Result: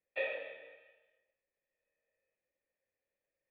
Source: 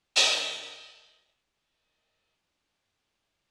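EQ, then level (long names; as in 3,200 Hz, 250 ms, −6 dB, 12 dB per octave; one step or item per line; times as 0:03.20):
formant resonators in series e
+3.0 dB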